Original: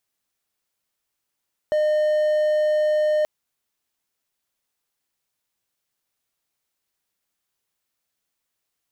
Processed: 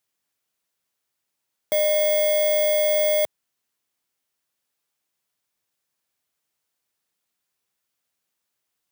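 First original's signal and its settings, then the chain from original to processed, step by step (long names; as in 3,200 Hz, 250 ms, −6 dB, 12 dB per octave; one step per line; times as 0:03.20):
tone triangle 609 Hz −15 dBFS 1.53 s
samples in bit-reversed order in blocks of 16 samples
high-pass filter 78 Hz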